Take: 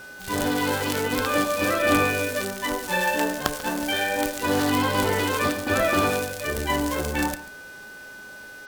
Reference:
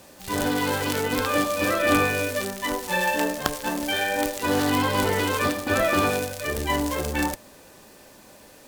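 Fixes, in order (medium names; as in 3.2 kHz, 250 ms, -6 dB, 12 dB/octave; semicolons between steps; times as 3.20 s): de-hum 410.3 Hz, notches 15; band-stop 1.5 kHz, Q 30; inverse comb 140 ms -17 dB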